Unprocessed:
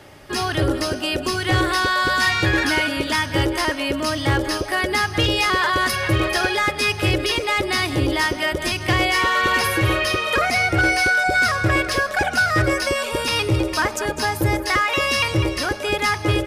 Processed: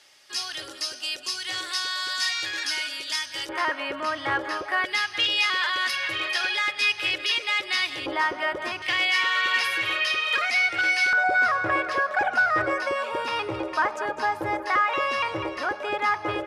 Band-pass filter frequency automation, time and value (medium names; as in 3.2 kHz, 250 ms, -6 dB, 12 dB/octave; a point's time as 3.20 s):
band-pass filter, Q 1.1
5.4 kHz
from 3.49 s 1.3 kHz
from 4.85 s 3 kHz
from 8.06 s 1.1 kHz
from 8.82 s 2.8 kHz
from 11.13 s 1 kHz